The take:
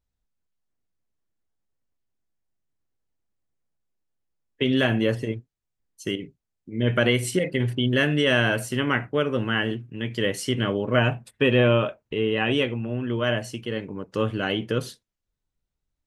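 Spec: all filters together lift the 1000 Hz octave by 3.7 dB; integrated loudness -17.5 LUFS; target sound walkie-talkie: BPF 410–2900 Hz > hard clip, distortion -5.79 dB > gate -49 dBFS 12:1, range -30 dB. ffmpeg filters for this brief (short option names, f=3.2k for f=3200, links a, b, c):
-af "highpass=410,lowpass=2.9k,equalizer=f=1k:t=o:g=5.5,asoftclip=type=hard:threshold=-25.5dB,agate=range=-30dB:threshold=-49dB:ratio=12,volume=13.5dB"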